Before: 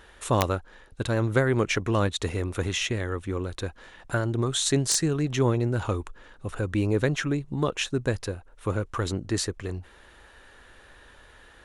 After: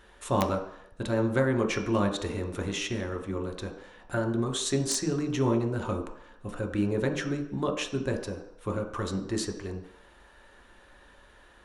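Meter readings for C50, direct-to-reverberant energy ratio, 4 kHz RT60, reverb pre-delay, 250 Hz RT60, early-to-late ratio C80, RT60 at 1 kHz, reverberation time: 8.5 dB, 2.0 dB, 0.70 s, 3 ms, 0.55 s, 10.5 dB, 0.75 s, 0.70 s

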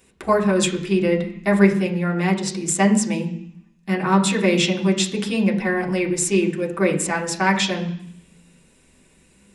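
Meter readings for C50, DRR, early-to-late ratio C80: 10.5 dB, -1.0 dB, 13.5 dB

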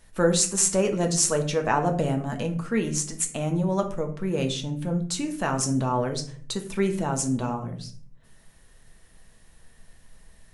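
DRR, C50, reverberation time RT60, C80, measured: 4.0 dB, 11.0 dB, 0.50 s, 15.0 dB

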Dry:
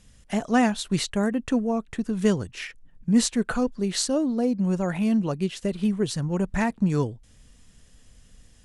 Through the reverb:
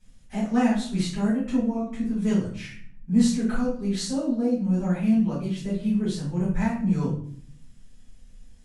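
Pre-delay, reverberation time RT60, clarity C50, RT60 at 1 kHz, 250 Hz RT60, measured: 4 ms, 0.55 s, 4.0 dB, 0.50 s, 0.85 s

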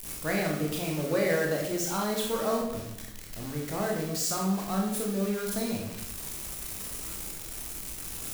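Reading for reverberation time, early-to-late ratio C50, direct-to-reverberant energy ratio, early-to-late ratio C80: 0.80 s, 3.5 dB, -1.5 dB, 6.5 dB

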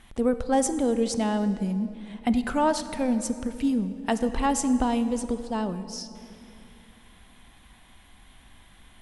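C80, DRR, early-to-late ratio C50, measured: 12.0 dB, 11.0 dB, 11.5 dB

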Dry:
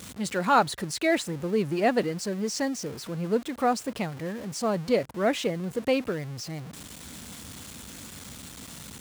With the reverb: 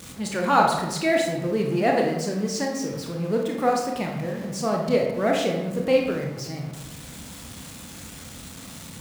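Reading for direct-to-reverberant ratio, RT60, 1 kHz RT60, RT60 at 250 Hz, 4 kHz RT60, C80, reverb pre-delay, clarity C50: 0.0 dB, 1.1 s, 1.0 s, 1.4 s, 0.60 s, 6.5 dB, 22 ms, 3.5 dB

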